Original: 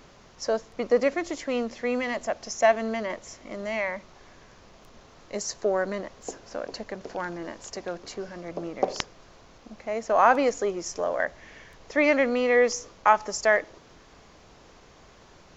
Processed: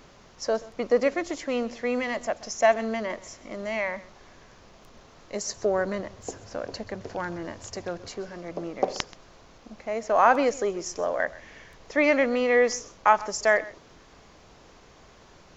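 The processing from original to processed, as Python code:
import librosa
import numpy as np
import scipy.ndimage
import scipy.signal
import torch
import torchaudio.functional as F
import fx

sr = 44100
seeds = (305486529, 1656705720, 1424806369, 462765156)

y = fx.peak_eq(x, sr, hz=97.0, db=14.5, octaves=0.81, at=(5.57, 8.08))
y = y + 10.0 ** (-19.5 / 20.0) * np.pad(y, (int(130 * sr / 1000.0), 0))[:len(y)]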